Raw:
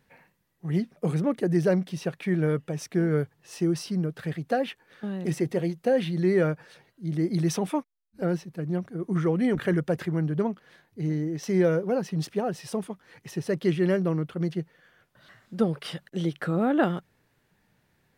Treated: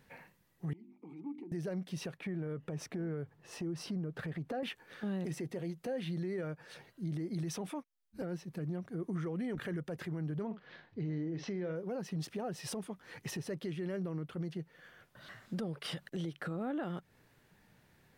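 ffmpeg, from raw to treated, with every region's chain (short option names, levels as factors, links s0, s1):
-filter_complex "[0:a]asettb=1/sr,asplit=3[s0][s1][s2];[s0]atrim=end=0.734[s3];[s1]atrim=start=0.73:end=1.52,asetpts=PTS-STARTPTS,afade=t=in:d=0.004:c=qsin,afade=t=out:st=0.786:d=0.004:c=qsin,bandreject=f=50:t=h:w=6,bandreject=f=100:t=h:w=6,bandreject=f=150:t=h:w=6,bandreject=f=200:t=h:w=6,bandreject=f=250:t=h:w=6,bandreject=f=300:t=h:w=6,bandreject=f=350:t=h:w=6,acompressor=threshold=0.0178:ratio=6:attack=3.2:release=140:knee=1:detection=peak,asplit=3[s4][s5][s6];[s4]bandpass=f=300:t=q:w=8,volume=1[s7];[s5]bandpass=f=870:t=q:w=8,volume=0.501[s8];[s6]bandpass=f=2240:t=q:w=8,volume=0.355[s9];[s7][s8][s9]amix=inputs=3:normalize=0[s10];[s2]atrim=start=1.516[s11];[s3][s10]acrossfade=d=0.004:c1=hsin:c2=qsin[s12];[s12][s11]acrossfade=d=0.004:c1=qsin:c2=hsin,asettb=1/sr,asplit=3[s13][s14][s15];[s13]atrim=end=2.174[s16];[s14]atrim=start=2.17:end=4.63,asetpts=PTS-STARTPTS,afade=t=in:d=0.004:c=qsin,afade=t=out:st=2.456:d=0.004:c=qsin,highshelf=f=2700:g=-11.5,acompressor=threshold=0.02:ratio=3:attack=3.2:release=140:knee=1:detection=peak[s17];[s15]atrim=start=4.626[s18];[s16][s17]acrossfade=d=0.004:c1=hsin:c2=qsin[s19];[s19][s18]acrossfade=d=0.004:c1=qsin:c2=hsin,asettb=1/sr,asplit=3[s20][s21][s22];[s20]atrim=end=10.464[s23];[s21]atrim=start=10.46:end=11.76,asetpts=PTS-STARTPTS,afade=t=in:d=0.004:c=qsin,afade=t=out:st=1.296:d=0.004:c=qsin,lowpass=f=4500:w=0.5412,lowpass=f=4500:w=1.3066,asplit=2[s24][s25];[s25]adelay=50,volume=0.237[s26];[s24][s26]amix=inputs=2:normalize=0,atrim=end_sample=57330[s27];[s22]atrim=start=11.756[s28];[s23][s27]acrossfade=d=0.004:c1=hsin:c2=qsin[s29];[s29][s28]acrossfade=d=0.004:c1=qsin:c2=hsin,acompressor=threshold=0.0158:ratio=5,alimiter=level_in=2.66:limit=0.0631:level=0:latency=1:release=26,volume=0.376,volume=1.26"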